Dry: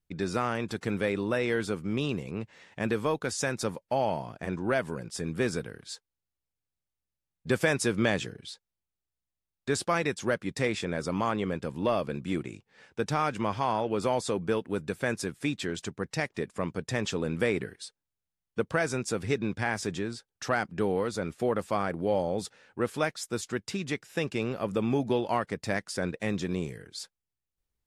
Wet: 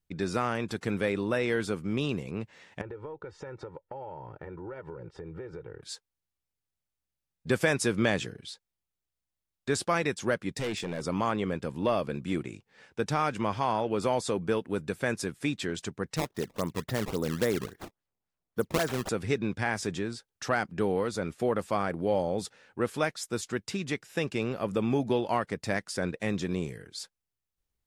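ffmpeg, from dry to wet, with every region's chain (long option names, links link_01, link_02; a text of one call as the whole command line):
ffmpeg -i in.wav -filter_complex "[0:a]asettb=1/sr,asplit=3[link_01][link_02][link_03];[link_01]atrim=end=2.814[link_04];[link_02]atrim=start=2.81:end=5.83,asetpts=PTS-STARTPTS,afade=type=in:duration=0.004:curve=qsin,afade=type=out:start_time=3.016:duration=0.004:curve=qsin,lowpass=1400,aecho=1:1:2.2:0.9,atrim=end_sample=133182,acompressor=threshold=-37dB:ratio=10:attack=3.2:release=140:knee=1:detection=peak[link_05];[link_03]atrim=start=5.826[link_06];[link_04][link_05]acrossfade=duration=0.004:curve1=hsin:curve2=qsin[link_07];[link_07][link_06]acrossfade=duration=0.004:curve1=qsin:curve2=hsin,asettb=1/sr,asplit=3[link_08][link_09][link_10];[link_08]atrim=end=10.564[link_11];[link_09]atrim=start=10.56:end=11.03,asetpts=PTS-STARTPTS,afade=type=in:duration=0.004:curve=qsin,afade=type=out:start_time=0.466:duration=0.004:curve=qsin,equalizer=frequency=1200:width=2:gain=-7.5,asoftclip=type=hard:threshold=-28.5dB[link_12];[link_10]atrim=start=11.026[link_13];[link_11][link_12]acrossfade=duration=0.004:curve1=hsin:curve2=qsin[link_14];[link_14][link_13]acrossfade=duration=0.004:curve1=qsin:curve2=hsin,asettb=1/sr,asplit=3[link_15][link_16][link_17];[link_15]atrim=end=16.164[link_18];[link_16]atrim=start=16.16:end=19.09,asetpts=PTS-STARTPTS,afade=type=in:duration=0.004:curve=qsin,afade=type=out:start_time=2.926:duration=0.004:curve=qsin,equalizer=frequency=2500:width=3.9:gain=-14,acrusher=samples=17:mix=1:aa=0.000001:lfo=1:lforange=27.2:lforate=3.6[link_19];[link_17]atrim=start=19.086[link_20];[link_18][link_19]acrossfade=duration=0.004:curve1=hsin:curve2=qsin[link_21];[link_21][link_20]acrossfade=duration=0.004:curve1=qsin:curve2=hsin" out.wav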